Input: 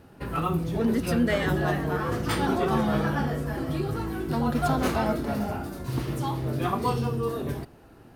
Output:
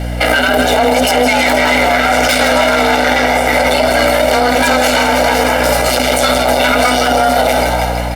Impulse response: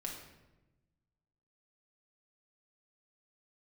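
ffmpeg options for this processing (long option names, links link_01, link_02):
-filter_complex "[0:a]aeval=exprs='0.282*(cos(1*acos(clip(val(0)/0.282,-1,1)))-cos(1*PI/2))+0.0891*(cos(4*acos(clip(val(0)/0.282,-1,1)))-cos(4*PI/2))+0.02*(cos(6*acos(clip(val(0)/0.282,-1,1)))-cos(6*PI/2))':channel_layout=same,equalizer=frequency=125:width_type=o:width=1:gain=-6,equalizer=frequency=1000:width_type=o:width=1:gain=-3,equalizer=frequency=2000:width_type=o:width=1:gain=8,equalizer=frequency=4000:width_type=o:width=1:gain=5,equalizer=frequency=8000:width_type=o:width=1:gain=7,aeval=exprs='0.447*(cos(1*acos(clip(val(0)/0.447,-1,1)))-cos(1*PI/2))+0.0631*(cos(8*acos(clip(val(0)/0.447,-1,1)))-cos(8*PI/2))':channel_layout=same,acompressor=threshold=-24dB:ratio=3,afreqshift=250,asplit=2[link_01][link_02];[link_02]asplit=8[link_03][link_04][link_05][link_06][link_07][link_08][link_09][link_10];[link_03]adelay=160,afreqshift=59,volume=-10dB[link_11];[link_04]adelay=320,afreqshift=118,volume=-13.9dB[link_12];[link_05]adelay=480,afreqshift=177,volume=-17.8dB[link_13];[link_06]adelay=640,afreqshift=236,volume=-21.6dB[link_14];[link_07]adelay=800,afreqshift=295,volume=-25.5dB[link_15];[link_08]adelay=960,afreqshift=354,volume=-29.4dB[link_16];[link_09]adelay=1120,afreqshift=413,volume=-33.3dB[link_17];[link_10]adelay=1280,afreqshift=472,volume=-37.1dB[link_18];[link_11][link_12][link_13][link_14][link_15][link_16][link_17][link_18]amix=inputs=8:normalize=0[link_19];[link_01][link_19]amix=inputs=2:normalize=0,acontrast=83,aecho=1:1:1.4:0.85,aeval=exprs='val(0)+0.0224*(sin(2*PI*60*n/s)+sin(2*PI*2*60*n/s)/2+sin(2*PI*3*60*n/s)/3+sin(2*PI*4*60*n/s)/4+sin(2*PI*5*60*n/s)/5)':channel_layout=same,alimiter=level_in=16.5dB:limit=-1dB:release=50:level=0:latency=1,volume=-1.5dB" -ar 48000 -c:a libopus -b:a 64k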